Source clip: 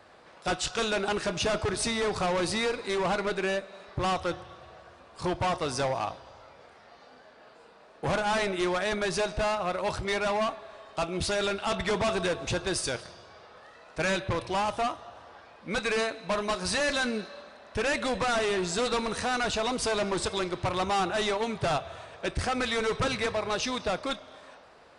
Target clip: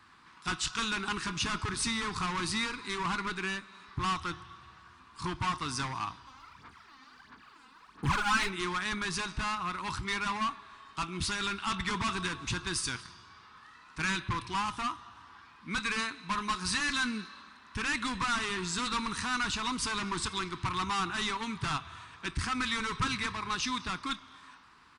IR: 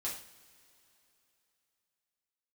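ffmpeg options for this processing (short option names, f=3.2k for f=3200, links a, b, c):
-filter_complex "[0:a]asplit=3[a][b][c];[a]afade=t=out:st=6.26:d=0.02[d];[b]aphaser=in_gain=1:out_gain=1:delay=3.9:decay=0.69:speed=1.5:type=sinusoidal,afade=t=in:st=6.26:d=0.02,afade=t=out:st=8.49:d=0.02[e];[c]afade=t=in:st=8.49:d=0.02[f];[d][e][f]amix=inputs=3:normalize=0,firequalizer=gain_entry='entry(280,0);entry(570,-26);entry(1000,4);entry(1600,1)':delay=0.05:min_phase=1,volume=-2.5dB"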